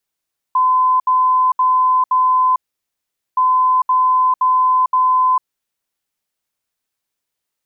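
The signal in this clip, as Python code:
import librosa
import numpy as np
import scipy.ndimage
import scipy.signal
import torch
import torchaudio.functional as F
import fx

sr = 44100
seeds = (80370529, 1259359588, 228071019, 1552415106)

y = fx.beep_pattern(sr, wave='sine', hz=1020.0, on_s=0.45, off_s=0.07, beeps=4, pause_s=0.81, groups=2, level_db=-10.5)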